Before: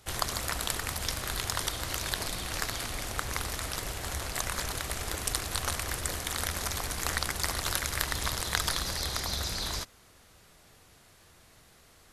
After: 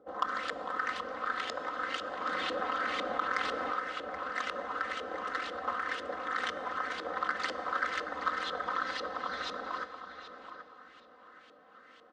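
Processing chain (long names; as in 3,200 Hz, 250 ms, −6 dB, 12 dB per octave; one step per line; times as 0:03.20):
comb filter 3.9 ms, depth 91%
upward compression, threshold −47 dBFS
auto-filter low-pass saw up 2 Hz 480–3,100 Hz
soft clipping −16.5 dBFS, distortion −18 dB
loudspeaker in its box 330–8,700 Hz, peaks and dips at 850 Hz −9 dB, 1,300 Hz +6 dB, 2,400 Hz −10 dB
feedback echo with a low-pass in the loop 777 ms, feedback 25%, low-pass 3,500 Hz, level −10 dB
on a send at −12.5 dB: convolution reverb RT60 3.9 s, pre-delay 7 ms
0:02.26–0:03.74: on the sum: envelope flattener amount 50%
level −2.5 dB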